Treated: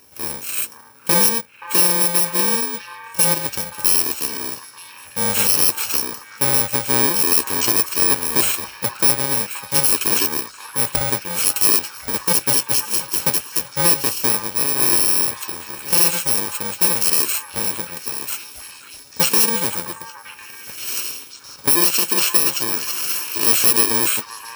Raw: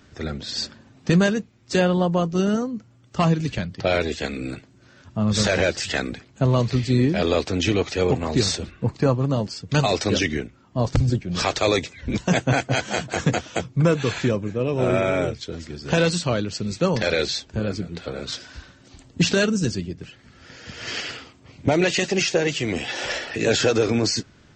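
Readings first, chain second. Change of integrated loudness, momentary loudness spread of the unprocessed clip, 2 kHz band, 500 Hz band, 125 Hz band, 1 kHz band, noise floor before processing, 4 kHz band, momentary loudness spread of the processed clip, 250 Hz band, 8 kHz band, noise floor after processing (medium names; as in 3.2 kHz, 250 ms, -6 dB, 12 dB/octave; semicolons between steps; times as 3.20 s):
+6.5 dB, 12 LU, +0.5 dB, -6.5 dB, -10.5 dB, +2.5 dB, -53 dBFS, +4.5 dB, 14 LU, -7.0 dB, +14.5 dB, -42 dBFS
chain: bit-reversed sample order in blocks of 64 samples; tone controls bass -15 dB, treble +2 dB; repeats whose band climbs or falls 526 ms, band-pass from 1.2 kHz, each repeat 0.7 oct, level -7.5 dB; trim +3.5 dB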